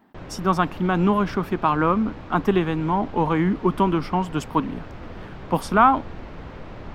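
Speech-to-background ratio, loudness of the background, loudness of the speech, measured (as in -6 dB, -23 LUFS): 17.5 dB, -39.5 LUFS, -22.0 LUFS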